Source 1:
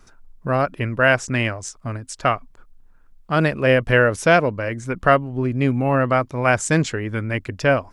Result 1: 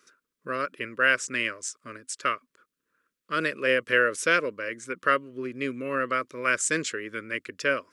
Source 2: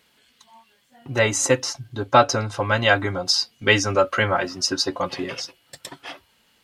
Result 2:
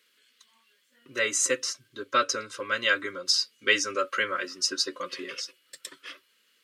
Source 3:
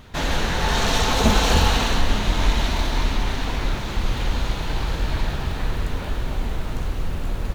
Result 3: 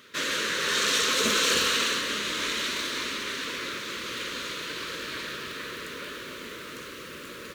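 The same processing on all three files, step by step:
high-pass filter 430 Hz 12 dB per octave
dynamic equaliser 8,200 Hz, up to +4 dB, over −47 dBFS, Q 2.1
Butterworth band-reject 780 Hz, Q 1.2
loudness normalisation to −27 LKFS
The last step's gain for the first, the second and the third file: −3.5, −4.5, 0.0 decibels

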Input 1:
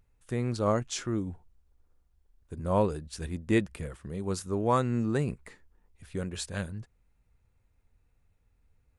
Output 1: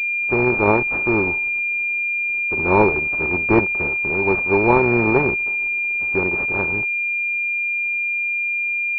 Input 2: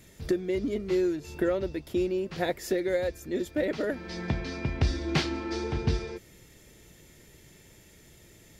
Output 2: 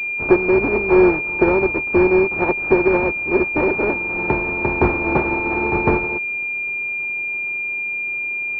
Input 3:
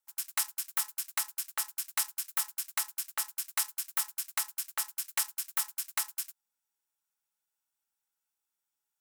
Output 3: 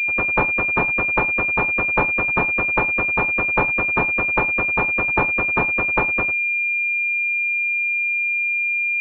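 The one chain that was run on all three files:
compressing power law on the bin magnitudes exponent 0.39
hollow resonant body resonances 380/880 Hz, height 13 dB
switching amplifier with a slow clock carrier 2,400 Hz
loudness normalisation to −18 LKFS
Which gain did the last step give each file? +7.5, +7.5, +16.5 decibels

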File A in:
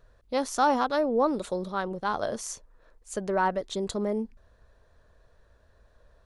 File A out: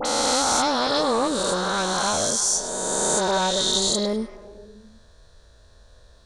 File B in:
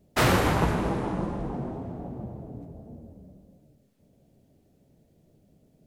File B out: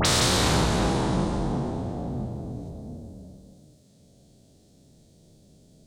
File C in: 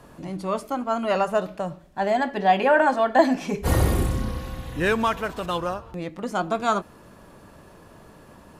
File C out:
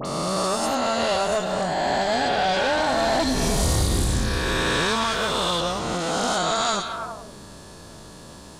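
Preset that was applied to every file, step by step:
peak hold with a rise ahead of every peak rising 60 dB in 2.40 s
echo through a band-pass that steps 104 ms, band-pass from 3,300 Hz, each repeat −0.7 octaves, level −6.5 dB
tube saturation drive 12 dB, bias 0.45
flat-topped bell 5,700 Hz +12.5 dB
downward compressor, threshold −21 dBFS
low-shelf EQ 170 Hz +3.5 dB
all-pass dispersion highs, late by 54 ms, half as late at 2,000 Hz
normalise the peak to −9 dBFS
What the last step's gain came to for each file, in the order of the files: +3.5, +2.0, +1.5 decibels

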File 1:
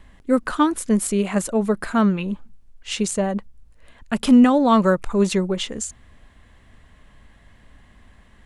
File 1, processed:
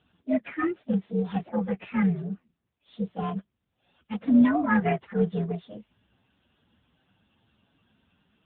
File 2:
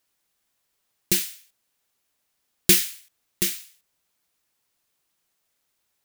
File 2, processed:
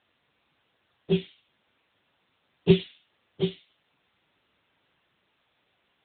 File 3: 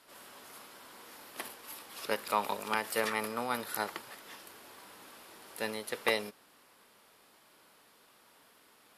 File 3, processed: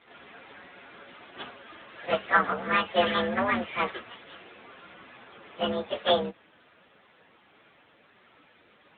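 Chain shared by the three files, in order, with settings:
partials spread apart or drawn together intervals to 126%
AMR narrowband 10.2 kbit/s 8,000 Hz
loudness normalisation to −27 LKFS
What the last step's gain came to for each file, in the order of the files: −5.5, +10.5, +12.5 decibels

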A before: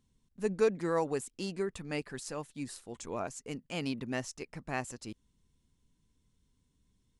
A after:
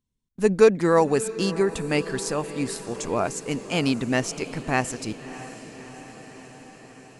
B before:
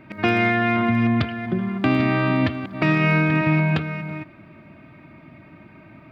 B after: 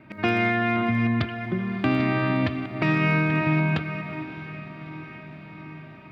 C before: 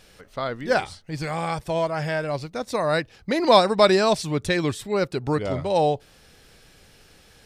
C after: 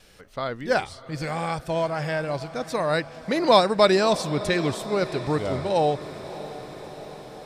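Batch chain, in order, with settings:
noise gate with hold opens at −50 dBFS
feedback delay with all-pass diffusion 632 ms, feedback 69%, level −15 dB
loudness normalisation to −24 LKFS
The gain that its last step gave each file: +12.0, −3.5, −1.0 decibels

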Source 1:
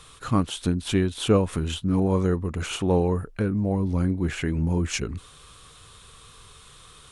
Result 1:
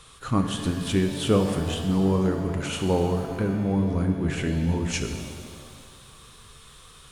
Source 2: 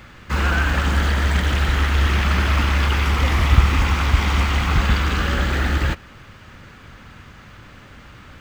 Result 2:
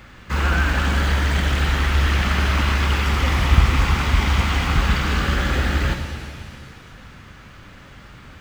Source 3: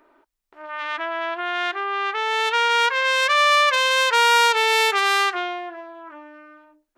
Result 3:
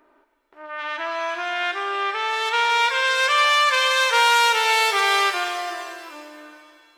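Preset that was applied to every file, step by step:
reverb with rising layers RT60 2 s, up +7 semitones, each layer −8 dB, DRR 5.5 dB
level −1.5 dB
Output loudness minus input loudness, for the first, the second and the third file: 0.0, −0.5, −0.5 LU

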